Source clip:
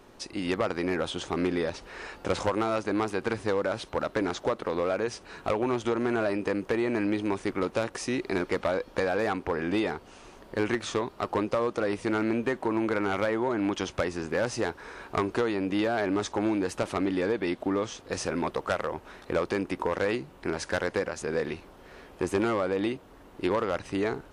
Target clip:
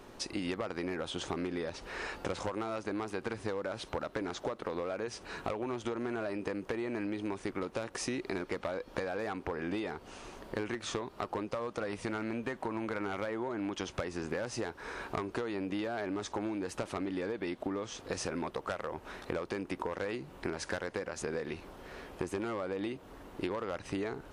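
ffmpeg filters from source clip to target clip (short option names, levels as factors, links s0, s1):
-filter_complex "[0:a]asettb=1/sr,asplit=3[s0][s1][s2];[s0]atrim=end=11.474[s3];[s1]atrim=start=11.47:end=13.01,asetpts=PTS-STARTPTS,afade=t=in:d=0.004:c=qsin,afade=t=out:st=1.536:d=0.004:c=qsin,equalizer=f=350:t=o:w=0.77:g=-4.5[s4];[s2]atrim=start=13.006[s5];[s3][s4]acrossfade=d=0.004:c1=hsin:c2=qsin[s6];[s6][s5]acrossfade=d=0.004:c1=qsin:c2=hsin,acompressor=threshold=0.02:ratio=10,volume=1.19"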